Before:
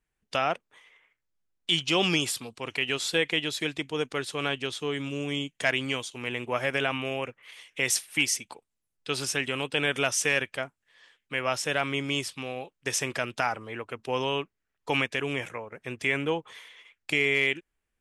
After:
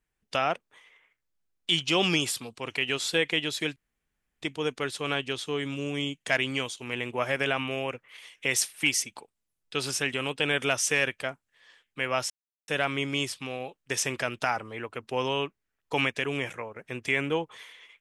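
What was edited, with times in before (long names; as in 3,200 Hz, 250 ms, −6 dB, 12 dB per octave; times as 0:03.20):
0:03.76: splice in room tone 0.66 s
0:11.64: splice in silence 0.38 s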